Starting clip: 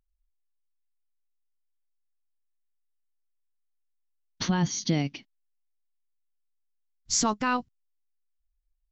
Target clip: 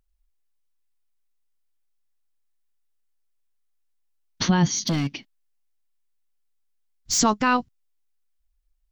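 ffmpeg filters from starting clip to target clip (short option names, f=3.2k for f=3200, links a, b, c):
-filter_complex "[0:a]asplit=3[a][b][c];[a]afade=t=out:st=4.75:d=0.02[d];[b]asoftclip=type=hard:threshold=-25.5dB,afade=t=in:st=4.75:d=0.02,afade=t=out:st=7.18:d=0.02[e];[c]afade=t=in:st=7.18:d=0.02[f];[d][e][f]amix=inputs=3:normalize=0,volume=6dB"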